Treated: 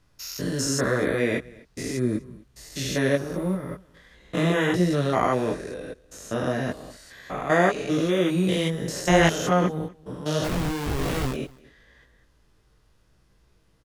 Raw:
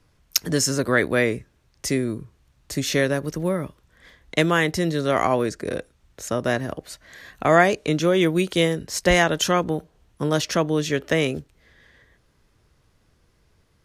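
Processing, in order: spectrogram pixelated in time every 200 ms; band-stop 2.2 kHz, Q 19; 10.44–11.34 s: Schmitt trigger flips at -26 dBFS; chorus voices 6, 0.9 Hz, delay 19 ms, depth 3.6 ms; on a send: delay 248 ms -23.5 dB; on the sum: trim +3 dB

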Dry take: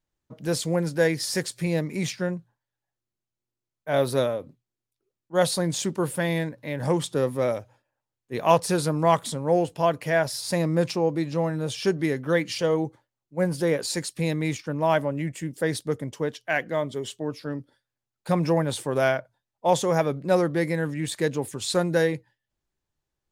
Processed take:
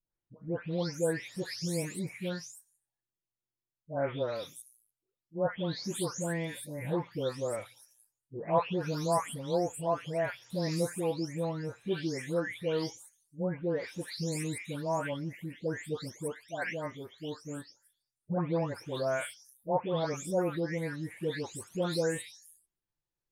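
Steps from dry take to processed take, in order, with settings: delay that grows with frequency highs late, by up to 490 ms; trim -8 dB

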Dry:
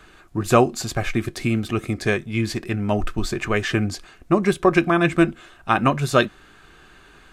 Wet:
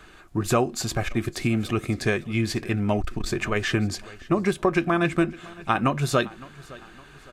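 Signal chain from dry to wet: compression 2.5:1, threshold -19 dBFS, peak gain reduction 7 dB; feedback delay 561 ms, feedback 43%, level -21 dB; transformer saturation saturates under 170 Hz

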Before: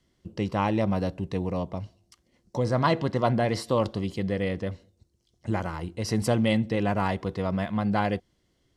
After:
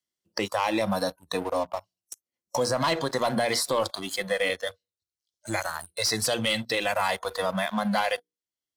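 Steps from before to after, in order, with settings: RIAA curve recording; hum notches 60/120/180/240/300/360/420/480 Hz; spectral noise reduction 29 dB; 4.50–6.93 s: graphic EQ 250/1000/4000 Hz -8/-7/+7 dB; waveshaping leveller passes 2; peak limiter -16 dBFS, peak gain reduction 7.5 dB; three bands compressed up and down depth 40%

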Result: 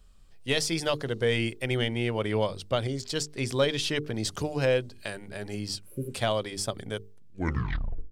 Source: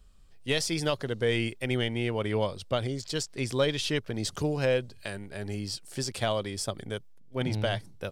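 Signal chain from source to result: tape stop on the ending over 1.00 s; hum notches 50/100/150/200/250/300/350/400/450 Hz; spectral replace 5.87–6.11 s, 620–10000 Hz before; trim +1.5 dB

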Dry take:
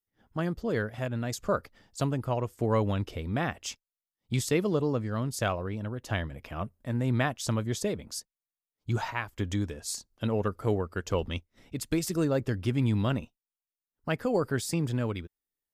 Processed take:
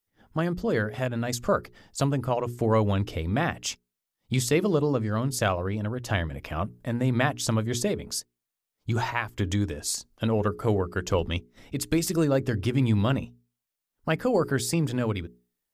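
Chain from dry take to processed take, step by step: hum notches 60/120/180/240/300/360/420 Hz; in parallel at -3 dB: compression, threshold -36 dBFS, peak gain reduction 14 dB; on the sum: trim +2.5 dB

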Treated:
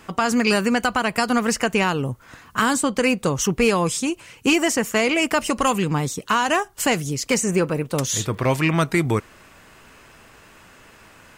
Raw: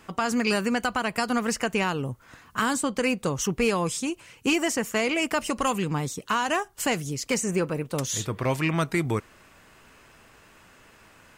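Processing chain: 8.14–8.75 s: crackle 65 per s -> 20 per s -43 dBFS; trim +5.5 dB

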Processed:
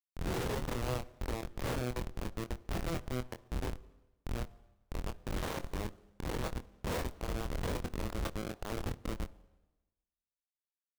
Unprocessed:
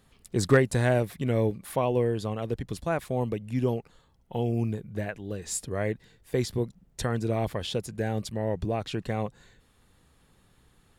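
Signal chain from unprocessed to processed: reverse spectral sustain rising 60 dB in 0.69 s; high-pass 470 Hz 24 dB/octave; peaking EQ 1.8 kHz -5 dB 1.9 oct; compression 2.5:1, threshold -42 dBFS, peak gain reduction 14.5 dB; treble shelf 6 kHz +6.5 dB; Schmitt trigger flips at -34 dBFS; doubling 24 ms -7.5 dB; on a send at -17 dB: reverberation RT60 1.1 s, pre-delay 44 ms; on the sum: sliding maximum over 17 samples; trim +8 dB

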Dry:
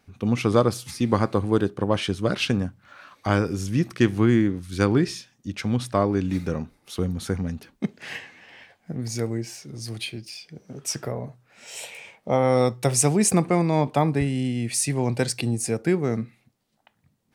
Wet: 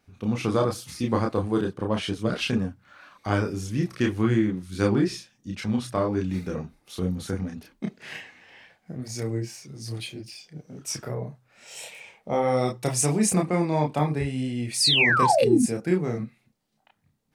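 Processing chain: painted sound fall, 14.80–15.63 s, 220–5300 Hz -17 dBFS; chorus voices 6, 0.81 Hz, delay 30 ms, depth 3.4 ms

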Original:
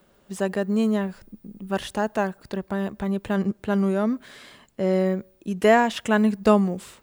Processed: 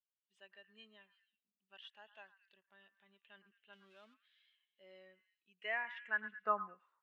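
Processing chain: 3.73–4.14 s: zero-crossing glitches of -23.5 dBFS; vibrato 0.71 Hz 7.1 cents; band-pass sweep 3 kHz -> 1 kHz, 5.42–6.97 s; on a send: repeats whose band climbs or falls 109 ms, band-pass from 1.3 kHz, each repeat 0.7 oct, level -7 dB; on the sum: spectral contrast expander 1.5:1; trim -7 dB

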